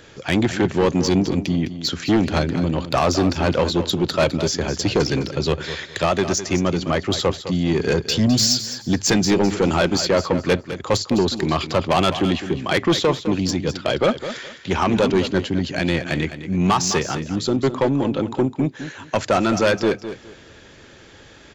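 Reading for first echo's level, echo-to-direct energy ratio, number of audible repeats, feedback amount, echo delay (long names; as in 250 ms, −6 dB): −11.5 dB, −11.5 dB, 2, 23%, 208 ms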